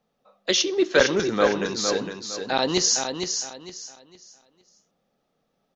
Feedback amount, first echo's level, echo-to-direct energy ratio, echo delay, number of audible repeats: 28%, -6.5 dB, -6.0 dB, 459 ms, 3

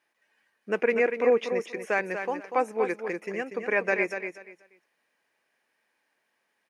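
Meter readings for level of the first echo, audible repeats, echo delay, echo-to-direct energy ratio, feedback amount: -8.0 dB, 3, 241 ms, -8.0 dB, 22%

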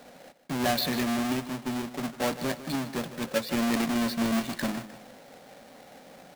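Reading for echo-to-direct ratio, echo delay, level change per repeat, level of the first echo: -13.0 dB, 153 ms, -7.5 dB, -14.0 dB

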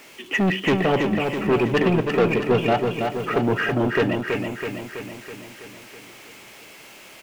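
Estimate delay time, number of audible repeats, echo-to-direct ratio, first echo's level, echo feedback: 327 ms, 7, -3.0 dB, -5.0 dB, 59%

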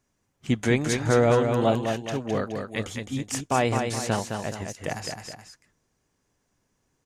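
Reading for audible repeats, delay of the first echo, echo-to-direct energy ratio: 2, 211 ms, -4.5 dB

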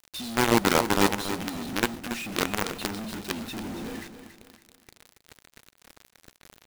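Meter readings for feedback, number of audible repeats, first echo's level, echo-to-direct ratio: 35%, 3, -10.5 dB, -10.0 dB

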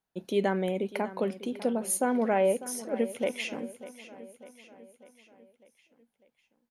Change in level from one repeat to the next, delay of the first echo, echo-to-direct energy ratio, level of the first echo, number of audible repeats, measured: -5.5 dB, 598 ms, -14.0 dB, -15.5 dB, 4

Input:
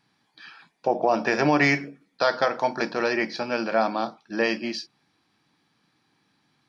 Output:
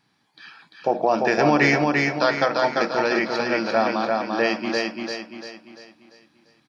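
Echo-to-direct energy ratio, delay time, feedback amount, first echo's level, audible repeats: -2.0 dB, 344 ms, 43%, -3.0 dB, 5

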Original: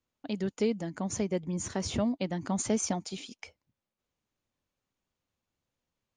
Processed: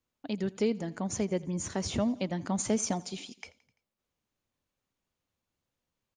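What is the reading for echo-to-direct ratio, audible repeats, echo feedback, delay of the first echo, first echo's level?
-20.0 dB, 3, 59%, 85 ms, -22.0 dB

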